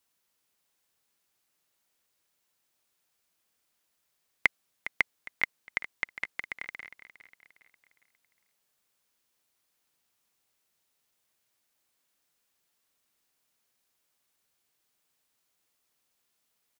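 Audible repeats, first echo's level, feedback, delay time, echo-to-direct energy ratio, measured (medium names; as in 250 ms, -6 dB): 3, -14.0 dB, 42%, 408 ms, -13.0 dB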